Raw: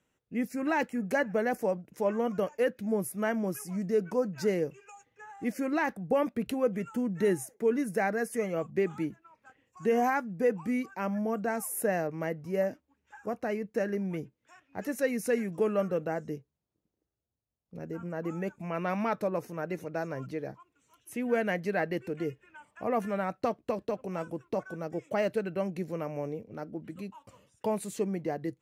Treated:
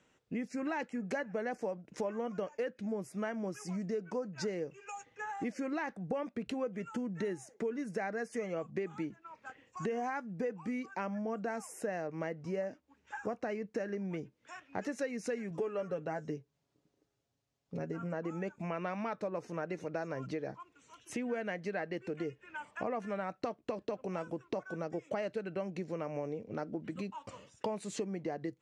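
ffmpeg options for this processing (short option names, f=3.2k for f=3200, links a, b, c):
-filter_complex "[0:a]asettb=1/sr,asplit=3[a][b][c];[a]atrim=end=15.504[d];[b]atrim=start=15.5:end=18.14,asetpts=PTS-STARTPTS,afade=t=in:d=0.004:c=qsin,afade=t=out:st=2.636:d=0.004:c=qsin,aecho=1:1:7.2:0.52,atrim=end_sample=116424[e];[c]atrim=start=18.136[f];[d][e]acrossfade=d=0.004:c1=hsin:c2=qsin[g];[g][f]acrossfade=d=0.004:c1=qsin:c2=hsin,acompressor=threshold=-42dB:ratio=6,lowpass=f=7.4k:w=0.5412,lowpass=f=7.4k:w=1.3066,lowshelf=f=140:g=-7,volume=8dB"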